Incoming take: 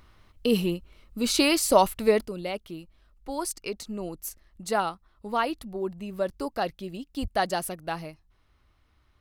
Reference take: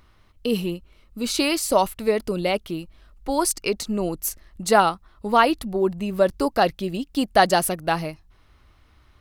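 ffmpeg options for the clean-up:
-filter_complex "[0:a]asplit=3[s0][s1][s2];[s0]afade=t=out:st=7.21:d=0.02[s3];[s1]highpass=f=140:w=0.5412,highpass=f=140:w=1.3066,afade=t=in:st=7.21:d=0.02,afade=t=out:st=7.33:d=0.02[s4];[s2]afade=t=in:st=7.33:d=0.02[s5];[s3][s4][s5]amix=inputs=3:normalize=0,asetnsamples=n=441:p=0,asendcmd='2.25 volume volume 9.5dB',volume=1"

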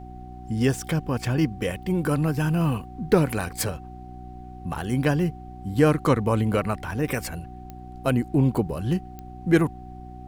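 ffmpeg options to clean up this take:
-af "adeclick=t=4,bandreject=f=61.3:t=h:w=4,bandreject=f=122.6:t=h:w=4,bandreject=f=183.9:t=h:w=4,bandreject=f=245.2:t=h:w=4,bandreject=f=306.5:t=h:w=4,bandreject=f=367.8:t=h:w=4,bandreject=f=750:w=30,agate=range=0.0891:threshold=0.0251"

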